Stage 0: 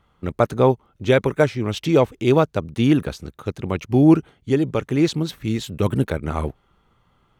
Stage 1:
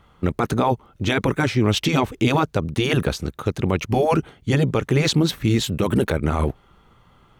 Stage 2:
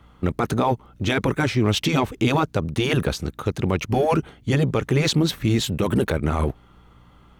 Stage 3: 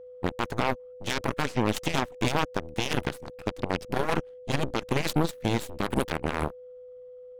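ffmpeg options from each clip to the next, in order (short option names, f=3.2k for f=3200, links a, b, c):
-af "afftfilt=real='re*lt(hypot(re,im),0.891)':imag='im*lt(hypot(re,im),0.891)':win_size=1024:overlap=0.75,alimiter=limit=-16.5dB:level=0:latency=1:release=42,volume=7.5dB"
-filter_complex "[0:a]asplit=2[a][b];[b]volume=24.5dB,asoftclip=hard,volume=-24.5dB,volume=-11dB[c];[a][c]amix=inputs=2:normalize=0,aeval=exprs='val(0)+0.00316*(sin(2*PI*60*n/s)+sin(2*PI*2*60*n/s)/2+sin(2*PI*3*60*n/s)/3+sin(2*PI*4*60*n/s)/4+sin(2*PI*5*60*n/s)/5)':c=same,volume=-2dB"
-af "aeval=exprs='0.316*(cos(1*acos(clip(val(0)/0.316,-1,1)))-cos(1*PI/2))+0.112*(cos(3*acos(clip(val(0)/0.316,-1,1)))-cos(3*PI/2))+0.0251*(cos(4*acos(clip(val(0)/0.316,-1,1)))-cos(4*PI/2))+0.01*(cos(8*acos(clip(val(0)/0.316,-1,1)))-cos(8*PI/2))':c=same,aeval=exprs='val(0)+0.00891*sin(2*PI*500*n/s)':c=same,volume=-2dB"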